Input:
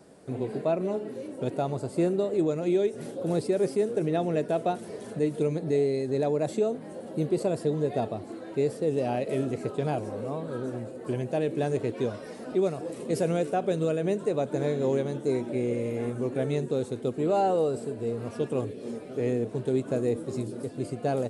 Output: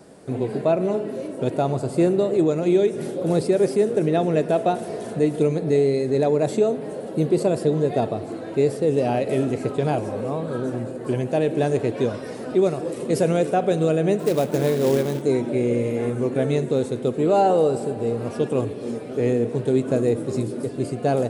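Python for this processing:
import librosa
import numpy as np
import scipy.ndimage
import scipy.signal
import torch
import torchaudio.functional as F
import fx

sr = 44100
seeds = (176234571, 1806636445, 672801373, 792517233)

y = fx.quant_float(x, sr, bits=2, at=(14.19, 15.22))
y = fx.rev_spring(y, sr, rt60_s=3.4, pass_ms=(50,), chirp_ms=55, drr_db=13.0)
y = y * librosa.db_to_amplitude(6.5)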